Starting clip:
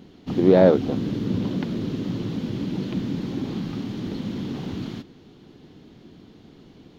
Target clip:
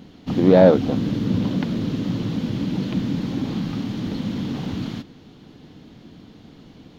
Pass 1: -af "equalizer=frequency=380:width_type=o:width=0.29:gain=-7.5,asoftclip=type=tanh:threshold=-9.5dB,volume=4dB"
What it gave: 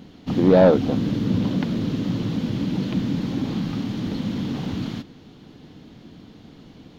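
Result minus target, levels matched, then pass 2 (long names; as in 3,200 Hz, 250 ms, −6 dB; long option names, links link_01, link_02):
soft clipping: distortion +12 dB
-af "equalizer=frequency=380:width_type=o:width=0.29:gain=-7.5,asoftclip=type=tanh:threshold=-2dB,volume=4dB"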